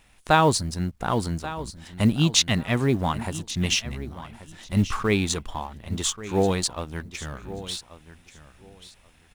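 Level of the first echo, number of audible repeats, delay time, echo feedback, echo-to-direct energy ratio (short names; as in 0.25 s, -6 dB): -15.0 dB, 2, 1.134 s, 19%, -15.0 dB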